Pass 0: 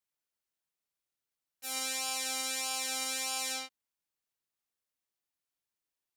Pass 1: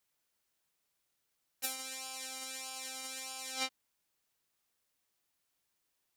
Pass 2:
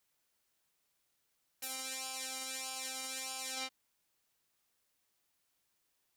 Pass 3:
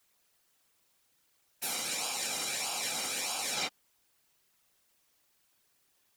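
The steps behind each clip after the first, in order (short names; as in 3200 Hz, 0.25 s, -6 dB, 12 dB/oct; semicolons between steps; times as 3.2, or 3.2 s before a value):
negative-ratio compressor -41 dBFS, ratio -0.5; gain +1 dB
limiter -27.5 dBFS, peak gain reduction 11 dB; gain +2 dB
whisperiser; gain +7 dB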